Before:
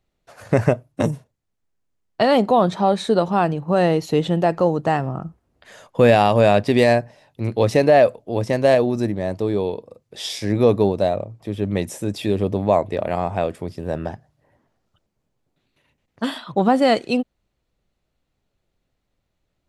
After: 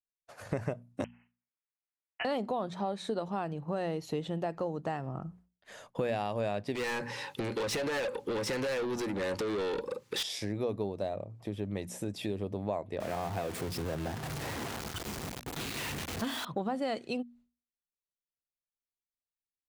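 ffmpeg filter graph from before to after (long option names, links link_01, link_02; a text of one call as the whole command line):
ffmpeg -i in.wav -filter_complex "[0:a]asettb=1/sr,asplit=3[link_01][link_02][link_03];[link_01]atrim=end=1.044[link_04];[link_02]atrim=start=1.04:end=2.25,asetpts=PTS-STARTPTS,afade=type=in:duration=0.004:curve=qsin,afade=type=out:start_time=1.206:duration=0.004:curve=qsin,acompressor=mode=upward:threshold=-28dB:ratio=2.5:attack=3.2:release=140:knee=2.83:detection=peak,highpass=frequency=1100:width=0.5412,highpass=frequency=1100:width=1.3066,lowpass=frequency=3100:width_type=q:width=0.5098,lowpass=frequency=3100:width_type=q:width=0.6013,lowpass=frequency=3100:width_type=q:width=0.9,lowpass=frequency=3100:width_type=q:width=2.563,afreqshift=-3600[link_05];[link_03]atrim=start=2.246[link_06];[link_04][link_05]acrossfade=duration=0.004:curve1=hsin:curve2=qsin[link_07];[link_07][link_06]acrossfade=duration=0.004:curve1=qsin:curve2=hsin,asettb=1/sr,asplit=3[link_08][link_09][link_10];[link_08]atrim=end=6.754[link_11];[link_09]atrim=start=6.75:end=10.23,asetpts=PTS-STARTPTS,afade=type=in:duration=0.004:curve=qsin,afade=type=out:start_time=3.476:duration=0.004:curve=qsin,asuperstop=centerf=670:order=20:qfactor=3.1,acompressor=threshold=-25dB:ratio=6:attack=3.2:release=140:knee=1:detection=peak,asplit=2[link_12][link_13];[link_13]highpass=frequency=720:poles=1,volume=29dB,asoftclip=type=tanh:threshold=-13dB[link_14];[link_12][link_14]amix=inputs=2:normalize=0,lowpass=frequency=7600:poles=1,volume=-6dB[link_15];[link_10]atrim=start=10.226[link_16];[link_11][link_15]acrossfade=duration=0.004:curve1=hsin:curve2=qsin[link_17];[link_17][link_16]acrossfade=duration=0.004:curve1=qsin:curve2=hsin,asettb=1/sr,asplit=3[link_18][link_19][link_20];[link_18]atrim=end=13.004[link_21];[link_19]atrim=start=13:end=16.45,asetpts=PTS-STARTPTS,afade=type=in:duration=0.004:curve=qsin,afade=type=out:start_time=3.446:duration=0.004:curve=qsin,aeval=exprs='val(0)+0.5*0.0596*sgn(val(0))':channel_layout=same,highpass=49,bandreject=frequency=590:width=10[link_22];[link_20]atrim=start=16.446[link_23];[link_21][link_22]acrossfade=duration=0.004:curve1=hsin:curve2=qsin[link_24];[link_24][link_23]acrossfade=duration=0.004:curve1=qsin:curve2=hsin,agate=range=-33dB:threshold=-44dB:ratio=3:detection=peak,bandreject=frequency=60:width_type=h:width=6,bandreject=frequency=120:width_type=h:width=6,bandreject=frequency=180:width_type=h:width=6,bandreject=frequency=240:width_type=h:width=6,acompressor=threshold=-29dB:ratio=3,volume=-5dB" out.wav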